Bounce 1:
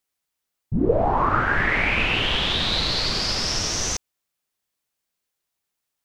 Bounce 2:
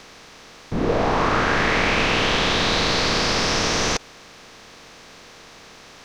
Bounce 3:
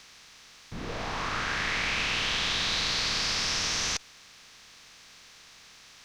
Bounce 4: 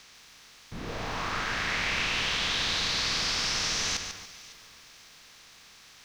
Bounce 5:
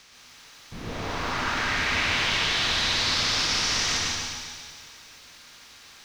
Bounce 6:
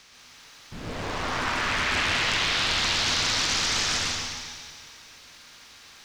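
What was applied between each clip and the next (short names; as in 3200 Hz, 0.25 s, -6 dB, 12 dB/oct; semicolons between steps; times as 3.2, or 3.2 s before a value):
per-bin compression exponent 0.4; gain -5 dB
passive tone stack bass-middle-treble 5-5-5; gain +2 dB
bit-crush 11-bit; echo with dull and thin repeats by turns 0.277 s, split 2000 Hz, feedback 54%, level -14 dB; lo-fi delay 0.144 s, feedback 35%, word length 9-bit, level -7 dB; gain -1 dB
split-band echo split 2300 Hz, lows 0.132 s, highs 0.177 s, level -5.5 dB; plate-style reverb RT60 1 s, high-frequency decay 0.75×, pre-delay 0.1 s, DRR 0 dB
Doppler distortion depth 0.72 ms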